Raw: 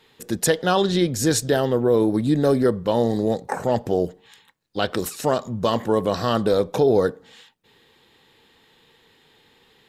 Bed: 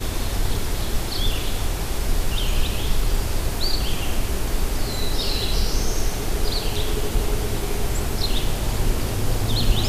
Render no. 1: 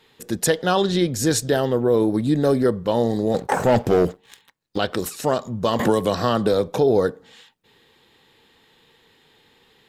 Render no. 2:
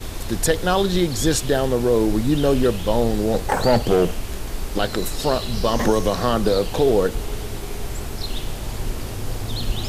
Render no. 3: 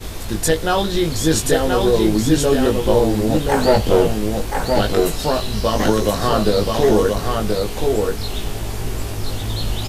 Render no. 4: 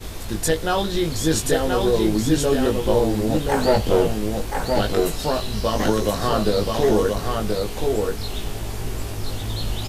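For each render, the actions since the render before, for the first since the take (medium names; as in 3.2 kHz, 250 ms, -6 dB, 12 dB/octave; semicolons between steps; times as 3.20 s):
3.34–4.78 s: waveshaping leveller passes 2; 5.79–6.68 s: three bands compressed up and down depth 100%
add bed -5 dB
doubling 19 ms -3.5 dB; delay 1029 ms -3.5 dB
trim -3.5 dB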